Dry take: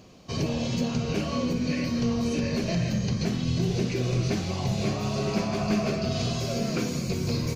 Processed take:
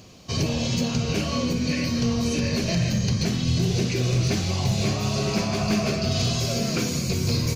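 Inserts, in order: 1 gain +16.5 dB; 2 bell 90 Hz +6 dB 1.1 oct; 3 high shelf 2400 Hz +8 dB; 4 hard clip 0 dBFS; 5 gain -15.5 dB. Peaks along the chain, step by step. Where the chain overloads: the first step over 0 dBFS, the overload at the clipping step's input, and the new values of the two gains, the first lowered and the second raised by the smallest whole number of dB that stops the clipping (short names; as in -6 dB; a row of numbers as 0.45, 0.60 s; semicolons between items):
+1.5, +4.0, +4.0, 0.0, -15.5 dBFS; step 1, 4.0 dB; step 1 +12.5 dB, step 5 -11.5 dB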